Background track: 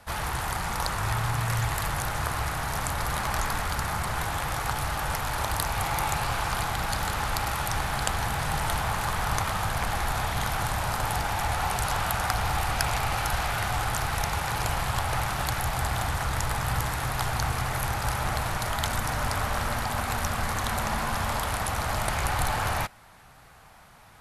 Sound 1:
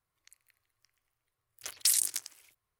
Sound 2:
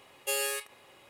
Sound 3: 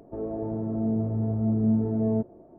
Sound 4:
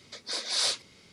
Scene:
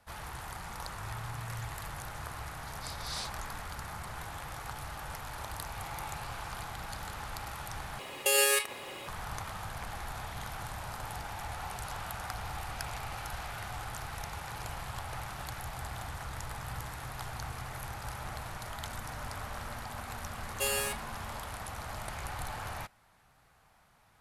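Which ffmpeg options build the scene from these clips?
-filter_complex "[2:a]asplit=2[a][b];[0:a]volume=-12.5dB[c];[a]alimiter=level_in=27.5dB:limit=-1dB:release=50:level=0:latency=1[d];[c]asplit=2[e][f];[e]atrim=end=7.994[g];[d]atrim=end=1.09,asetpts=PTS-STARTPTS,volume=-14dB[h];[f]atrim=start=9.076[i];[4:a]atrim=end=1.12,asetpts=PTS-STARTPTS,volume=-13dB,afade=t=in:d=0.004:c=hsin,afade=t=out:st=1.116:d=0.004:c=hsin,adelay=2540[j];[b]atrim=end=1.09,asetpts=PTS-STARTPTS,volume=-1dB,afade=t=in:d=0.004:c=hsin,afade=t=out:st=1.086:d=0.004:c=hsin,adelay=20330[k];[g][h]acrossfade=d=0.004:c1=hsin:c2=hsin[l];[l][i]acrossfade=d=0.004:c1=hsin:c2=hsin[m];[m][j][k]amix=inputs=3:normalize=0"

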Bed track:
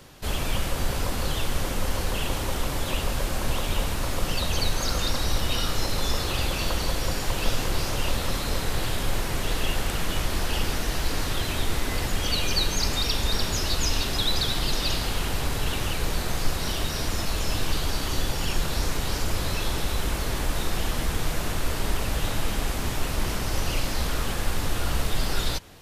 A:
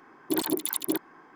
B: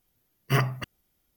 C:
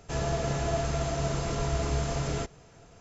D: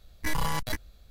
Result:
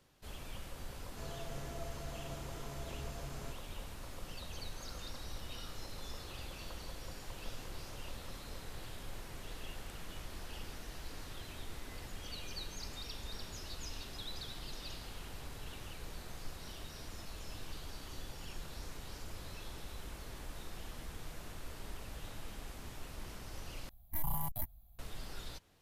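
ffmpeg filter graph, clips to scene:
-filter_complex "[0:a]volume=-20dB[a];[4:a]firequalizer=gain_entry='entry(160,0);entry(430,-20);entry(720,2);entry(1500,-18);entry(3200,-13);entry(5200,-19);entry(13000,14)':delay=0.05:min_phase=1[b];[a]asplit=2[c][d];[c]atrim=end=23.894[e];[b]atrim=end=1.1,asetpts=PTS-STARTPTS,volume=-7dB[f];[d]atrim=start=24.986[g];[3:a]atrim=end=3,asetpts=PTS-STARTPTS,volume=-17.5dB,afade=t=in:d=0.004:c=hsin,afade=t=out:st=2.996:d=0.004:c=hsin,adelay=1070[h];[e][f]acrossfade=d=0.004:c1=hsin:c2=hsin[i];[i][g]acrossfade=d=0.004:c1=hsin:c2=hsin[j];[j][h]amix=inputs=2:normalize=0"

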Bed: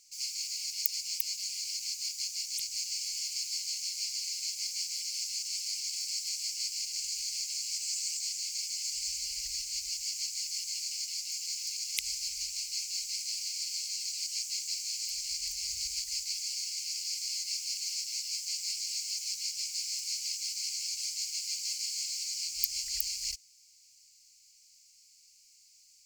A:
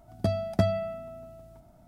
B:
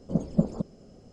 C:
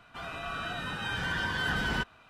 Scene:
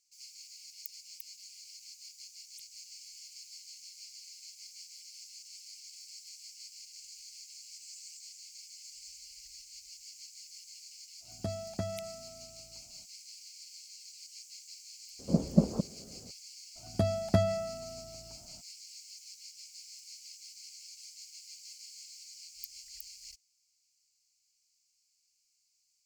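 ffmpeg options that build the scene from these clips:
-filter_complex "[1:a]asplit=2[a][b];[0:a]volume=-14.5dB[c];[a]alimiter=limit=-13.5dB:level=0:latency=1:release=192[d];[2:a]highpass=42[e];[d]atrim=end=1.87,asetpts=PTS-STARTPTS,volume=-9.5dB,afade=t=in:d=0.05,afade=t=out:st=1.82:d=0.05,adelay=11200[f];[e]atrim=end=1.12,asetpts=PTS-STARTPTS,volume=-0.5dB,afade=t=in:d=0.004:c=hsin,afade=t=out:st=1.116:d=0.004:c=hsin,adelay=15190[g];[b]atrim=end=1.87,asetpts=PTS-STARTPTS,volume=-2dB,afade=t=in:d=0.02,afade=t=out:st=1.85:d=0.02,adelay=16750[h];[c][f][g][h]amix=inputs=4:normalize=0"

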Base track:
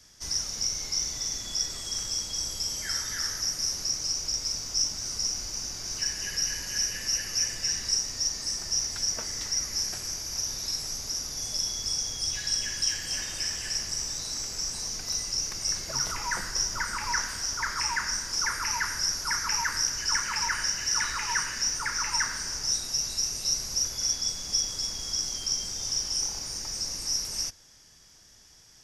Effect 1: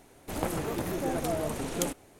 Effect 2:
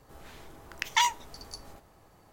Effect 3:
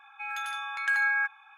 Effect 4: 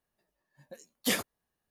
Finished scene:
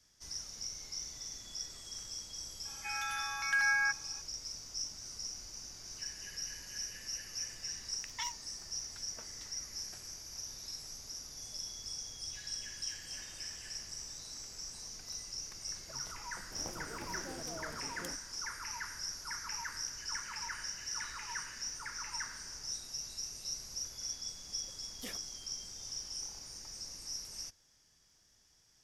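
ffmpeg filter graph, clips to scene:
-filter_complex "[0:a]volume=-13dB[a];[2:a]highpass=f=860:w=0.5412,highpass=f=860:w=1.3066[b];[3:a]atrim=end=1.57,asetpts=PTS-STARTPTS,volume=-4dB,afade=t=in:d=0.004:c=hsin,afade=t=out:st=1.566:d=0.004:c=hsin,adelay=2650[c];[b]atrim=end=2.32,asetpts=PTS-STARTPTS,volume=-17dB,afade=t=in:d=0.004:c=hsin,afade=t=out:st=2.316:d=0.004:c=hsin,adelay=318402S[d];[1:a]atrim=end=2.19,asetpts=PTS-STARTPTS,volume=-15.5dB,afade=t=in:d=0.004:c=hsin,afade=t=out:st=2.186:d=0.004:c=hsin,adelay=16230[e];[4:a]atrim=end=1.7,asetpts=PTS-STARTPTS,volume=-17.5dB,afade=t=in:d=0.004:c=hsin,afade=t=out:st=1.696:d=0.004:c=hsin,adelay=23960[f];[a][c][d][e][f]amix=inputs=5:normalize=0"

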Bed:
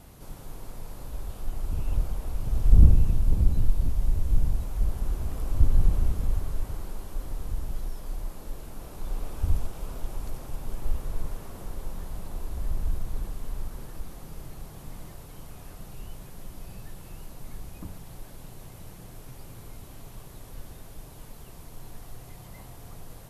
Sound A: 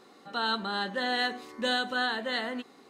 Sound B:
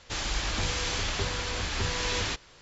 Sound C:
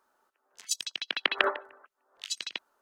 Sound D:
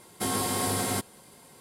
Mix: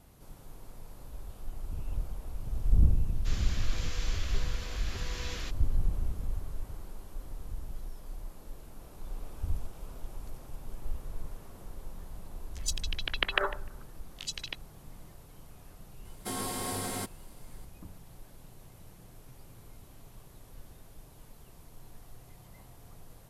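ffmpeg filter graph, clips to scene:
-filter_complex "[0:a]volume=-8dB[a];[2:a]bandreject=f=880:w=5.2,atrim=end=2.61,asetpts=PTS-STARTPTS,volume=-11dB,afade=t=in:d=0.004:c=hsin,afade=t=out:st=2.606:d=0.004:c=hsin,adelay=3150[b];[3:a]atrim=end=2.81,asetpts=PTS-STARTPTS,volume=-3dB,afade=t=in:d=0.004:c=hsin,afade=t=out:st=2.806:d=0.004:c=hsin,adelay=11970[c];[4:a]atrim=end=1.6,asetpts=PTS-STARTPTS,volume=-7dB,afade=t=in:d=0.004:c=hsin,afade=t=out:st=1.596:d=0.004:c=hsin,adelay=16050[d];[a][b][c][d]amix=inputs=4:normalize=0"

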